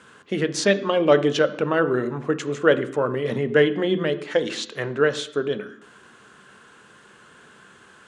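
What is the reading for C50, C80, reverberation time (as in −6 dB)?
14.5 dB, 17.5 dB, 0.70 s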